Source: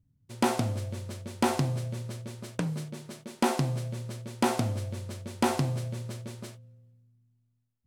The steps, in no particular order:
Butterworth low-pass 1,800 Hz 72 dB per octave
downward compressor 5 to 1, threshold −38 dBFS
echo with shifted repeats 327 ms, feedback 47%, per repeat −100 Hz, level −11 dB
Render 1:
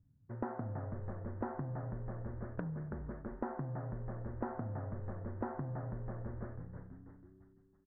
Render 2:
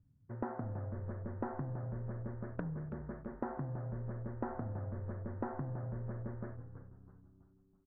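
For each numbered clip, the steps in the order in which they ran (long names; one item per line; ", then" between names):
echo with shifted repeats, then Butterworth low-pass, then downward compressor
Butterworth low-pass, then downward compressor, then echo with shifted repeats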